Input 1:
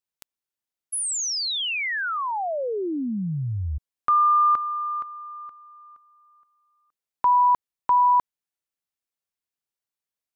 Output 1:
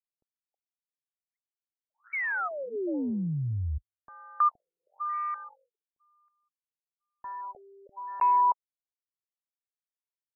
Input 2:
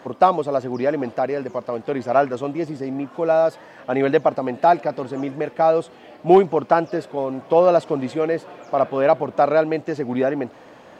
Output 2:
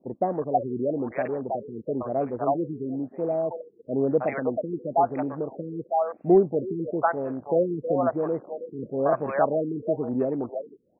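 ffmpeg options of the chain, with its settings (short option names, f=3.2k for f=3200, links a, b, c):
-filter_complex "[0:a]acrossover=split=620[a][b];[b]adelay=320[c];[a][c]amix=inputs=2:normalize=0,afwtdn=0.0251,afftfilt=real='re*lt(b*sr/1024,450*pow(2800/450,0.5+0.5*sin(2*PI*1*pts/sr)))':imag='im*lt(b*sr/1024,450*pow(2800/450,0.5+0.5*sin(2*PI*1*pts/sr)))':win_size=1024:overlap=0.75,volume=-3dB"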